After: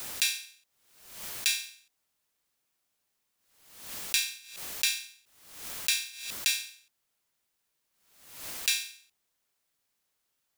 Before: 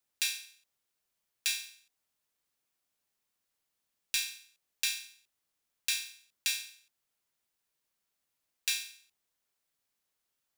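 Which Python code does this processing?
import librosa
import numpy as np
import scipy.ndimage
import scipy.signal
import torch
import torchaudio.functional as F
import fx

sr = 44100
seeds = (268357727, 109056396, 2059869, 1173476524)

y = fx.pre_swell(x, sr, db_per_s=71.0)
y = y * librosa.db_to_amplitude(4.0)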